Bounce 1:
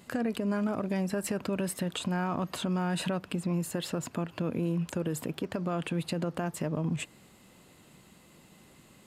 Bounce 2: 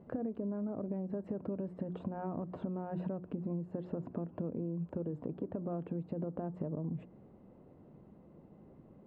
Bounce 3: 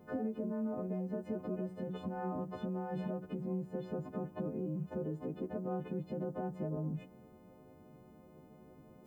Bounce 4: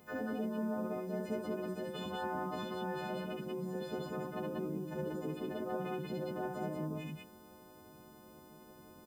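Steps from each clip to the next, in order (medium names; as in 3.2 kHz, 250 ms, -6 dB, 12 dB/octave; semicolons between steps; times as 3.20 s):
Chebyshev low-pass 540 Hz, order 2; hum notches 60/120/180/240/300/360 Hz; compression, threshold -37 dBFS, peak gain reduction 10 dB; trim +2.5 dB
partials quantised in pitch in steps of 3 st; trim +1 dB
tilt shelf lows -8.5 dB, about 1.3 kHz; loudspeakers at several distances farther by 23 m -2 dB, 64 m -1 dB; trim +3.5 dB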